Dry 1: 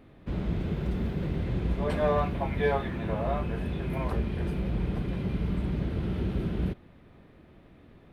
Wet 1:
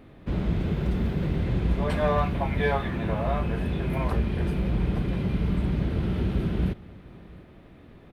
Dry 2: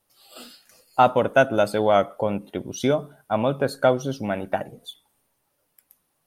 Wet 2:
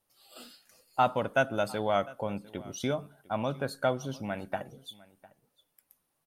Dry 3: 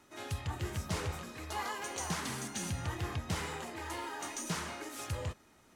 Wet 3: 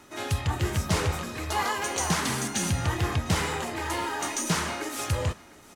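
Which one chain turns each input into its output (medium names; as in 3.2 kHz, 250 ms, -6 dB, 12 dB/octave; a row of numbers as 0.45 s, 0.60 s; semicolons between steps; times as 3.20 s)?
dynamic bell 420 Hz, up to -5 dB, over -34 dBFS, Q 0.89; delay 703 ms -22 dB; peak normalisation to -12 dBFS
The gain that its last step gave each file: +4.5 dB, -6.5 dB, +10.5 dB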